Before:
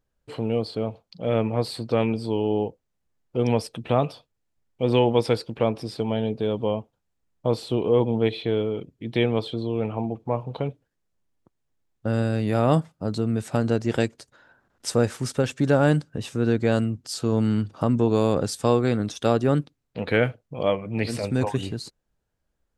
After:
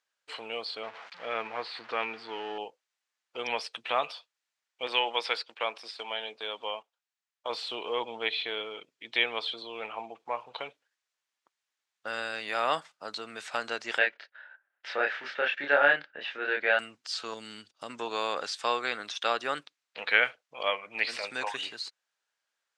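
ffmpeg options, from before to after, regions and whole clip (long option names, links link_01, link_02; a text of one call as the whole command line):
ffmpeg -i in.wav -filter_complex "[0:a]asettb=1/sr,asplit=3[link_01][link_02][link_03];[link_01]atrim=end=0.834[link_04];[link_02]atrim=start=0.83:end=2.58,asetpts=PTS-STARTPTS,afade=type=in:duration=0.004:curve=qsin,afade=type=out:start_time=1.746:duration=0.004:curve=qsin,aeval=exprs='val(0)+0.5*0.0168*sgn(val(0))':channel_layout=same,lowpass=2200,equalizer=frequency=560:width_type=o:width=0.24:gain=-5[link_05];[link_03]atrim=start=2.576[link_06];[link_04][link_05]acrossfade=duration=0.004:curve1=hsin:curve2=qsin[link_07];[link_07][link_06]acrossfade=duration=0.004:curve1=qsin:curve2=hsin,asettb=1/sr,asplit=3[link_08][link_09][link_10];[link_08]atrim=end=4.874[link_11];[link_09]atrim=start=4.87:end=7.5,asetpts=PTS-STARTPTS,afade=type=in:duration=0.004:curve=qsin,afade=type=out:start_time=2.626:duration=0.004:curve=qsin,agate=range=-7dB:threshold=-37dB:ratio=16:release=100:detection=peak,highpass=frequency=390:poles=1[link_12];[link_10]atrim=start=7.496[link_13];[link_11][link_12]acrossfade=duration=0.004:curve1=hsin:curve2=qsin[link_14];[link_14][link_13]acrossfade=duration=0.004:curve1=qsin:curve2=hsin,asettb=1/sr,asplit=3[link_15][link_16][link_17];[link_15]atrim=end=13.984[link_18];[link_16]atrim=start=13.98:end=16.79,asetpts=PTS-STARTPTS,afade=type=in:duration=0.004:curve=qsin,afade=type=out:start_time=2.806:duration=0.004:curve=qsin,agate=range=-15dB:threshold=-57dB:ratio=16:release=100:detection=peak,highpass=120,equalizer=frequency=120:width_type=q:width=4:gain=-10,equalizer=frequency=240:width_type=q:width=4:gain=-3,equalizer=frequency=600:width_type=q:width=4:gain=4,equalizer=frequency=1100:width_type=q:width=4:gain=-7,equalizer=frequency=1700:width_type=q:width=4:gain=6,lowpass=frequency=3000:width=0.5412,lowpass=frequency=3000:width=1.3066,asplit=2[link_19][link_20];[link_20]adelay=28,volume=-2dB[link_21];[link_19][link_21]amix=inputs=2:normalize=0,atrim=end_sample=123921[link_22];[link_17]atrim=start=16.786[link_23];[link_18][link_22]acrossfade=duration=0.004:curve1=hsin:curve2=qsin[link_24];[link_24][link_23]acrossfade=duration=0.004:curve1=qsin:curve2=hsin,asettb=1/sr,asplit=3[link_25][link_26][link_27];[link_25]atrim=end=17.344[link_28];[link_26]atrim=start=17.34:end=17.9,asetpts=PTS-STARTPTS,afade=type=in:duration=0.004:curve=qsin,afade=type=out:start_time=0.556:duration=0.004:curve=qsin,agate=range=-33dB:threshold=-36dB:ratio=3:release=100:detection=peak,equalizer=frequency=1200:width_type=o:width=2.2:gain=-13[link_29];[link_27]atrim=start=17.896[link_30];[link_28][link_29]acrossfade=duration=0.004:curve1=hsin:curve2=qsin[link_31];[link_31][link_30]acrossfade=duration=0.004:curve1=qsin:curve2=hsin,lowpass=7100,acrossover=split=4500[link_32][link_33];[link_33]acompressor=threshold=-55dB:ratio=4:attack=1:release=60[link_34];[link_32][link_34]amix=inputs=2:normalize=0,highpass=1400,volume=6dB" out.wav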